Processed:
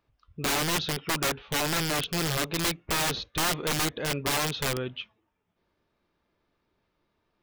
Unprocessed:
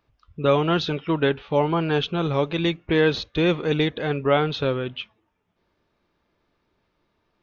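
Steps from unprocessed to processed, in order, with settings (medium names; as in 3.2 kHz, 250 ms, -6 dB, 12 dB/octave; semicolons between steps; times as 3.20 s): rattle on loud lows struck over -26 dBFS, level -17 dBFS; integer overflow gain 17 dB; trim -4.5 dB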